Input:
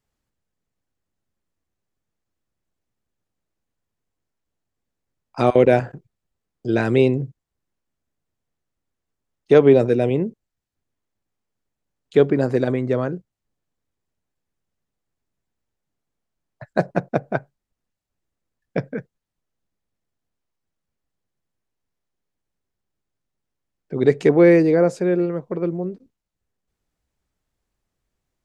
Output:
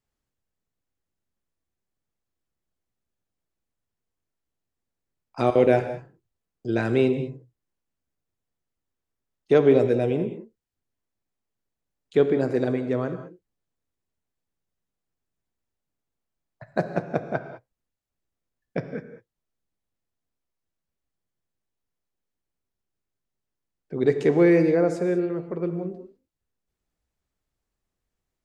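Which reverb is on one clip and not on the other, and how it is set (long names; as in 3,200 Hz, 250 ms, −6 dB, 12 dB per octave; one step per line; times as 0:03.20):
reverb whose tail is shaped and stops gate 230 ms flat, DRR 8.5 dB
level −5 dB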